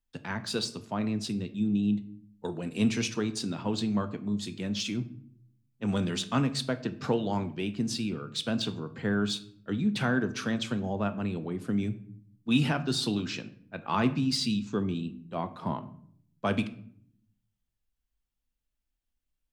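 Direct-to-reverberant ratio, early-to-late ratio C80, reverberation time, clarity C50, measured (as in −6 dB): 10.0 dB, 18.5 dB, 0.65 s, 15.0 dB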